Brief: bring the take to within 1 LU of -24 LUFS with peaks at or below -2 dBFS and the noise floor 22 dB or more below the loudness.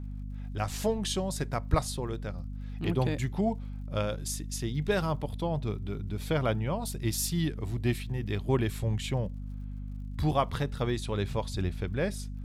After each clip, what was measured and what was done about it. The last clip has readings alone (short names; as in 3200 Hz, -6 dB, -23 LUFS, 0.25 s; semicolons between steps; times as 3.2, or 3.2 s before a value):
ticks 50/s; hum 50 Hz; harmonics up to 250 Hz; hum level -35 dBFS; loudness -32.0 LUFS; peak -10.5 dBFS; loudness target -24.0 LUFS
-> de-click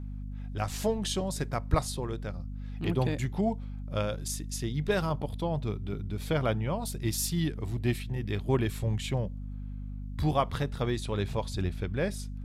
ticks 0.080/s; hum 50 Hz; harmonics up to 250 Hz; hum level -36 dBFS
-> de-hum 50 Hz, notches 5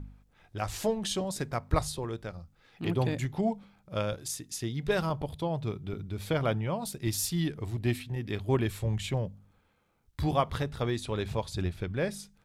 hum none; loudness -32.5 LUFS; peak -12.0 dBFS; loudness target -24.0 LUFS
-> gain +8.5 dB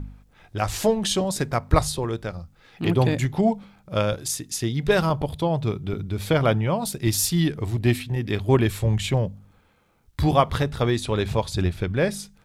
loudness -24.0 LUFS; peak -3.5 dBFS; noise floor -59 dBFS